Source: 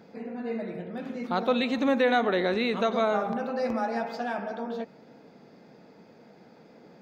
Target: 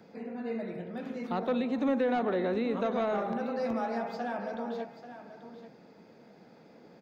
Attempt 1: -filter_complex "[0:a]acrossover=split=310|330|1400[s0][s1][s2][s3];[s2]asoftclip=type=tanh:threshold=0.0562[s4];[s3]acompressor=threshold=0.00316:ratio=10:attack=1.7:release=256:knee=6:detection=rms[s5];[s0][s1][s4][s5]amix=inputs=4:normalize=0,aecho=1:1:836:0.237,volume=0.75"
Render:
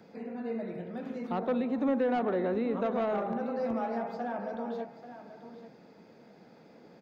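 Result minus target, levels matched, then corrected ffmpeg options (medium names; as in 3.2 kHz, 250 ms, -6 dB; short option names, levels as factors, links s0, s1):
compression: peak gain reduction +9 dB
-filter_complex "[0:a]acrossover=split=310|330|1400[s0][s1][s2][s3];[s2]asoftclip=type=tanh:threshold=0.0562[s4];[s3]acompressor=threshold=0.01:ratio=10:attack=1.7:release=256:knee=6:detection=rms[s5];[s0][s1][s4][s5]amix=inputs=4:normalize=0,aecho=1:1:836:0.237,volume=0.75"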